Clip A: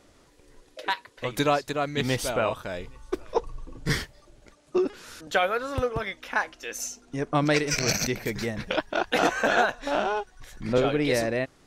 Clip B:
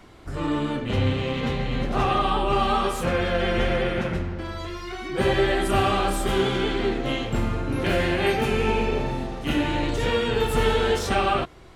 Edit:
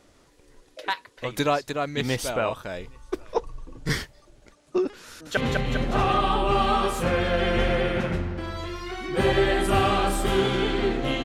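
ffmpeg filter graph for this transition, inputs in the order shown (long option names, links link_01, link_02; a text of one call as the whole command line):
ffmpeg -i cue0.wav -i cue1.wav -filter_complex "[0:a]apad=whole_dur=11.24,atrim=end=11.24,atrim=end=5.372[link_01];[1:a]atrim=start=1.378:end=7.25[link_02];[link_01][link_02]acrossfade=duration=0.004:curve1=hsin:curve2=hsin,asplit=2[link_03][link_04];[link_04]afade=type=in:start_time=5.05:duration=0.01,afade=type=out:start_time=5.37:duration=0.01,aecho=0:1:200|400|600|800|1000|1200|1400|1600|1800:0.707946|0.424767|0.25486|0.152916|0.0917498|0.0550499|0.0330299|0.019818|0.0118908[link_05];[link_03][link_05]amix=inputs=2:normalize=0" out.wav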